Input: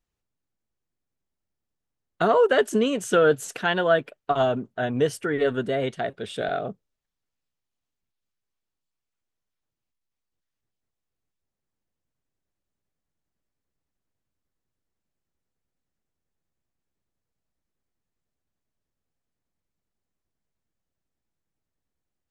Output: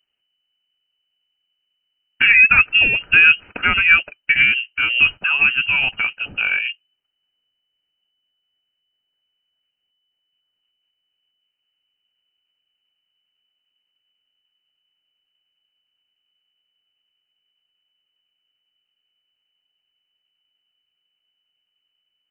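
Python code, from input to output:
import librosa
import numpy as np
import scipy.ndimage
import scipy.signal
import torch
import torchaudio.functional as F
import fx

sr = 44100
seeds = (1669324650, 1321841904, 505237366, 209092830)

y = fx.notch(x, sr, hz=1900.0, q=10.0)
y = fx.freq_invert(y, sr, carrier_hz=3000)
y = y * librosa.db_to_amplitude(7.0)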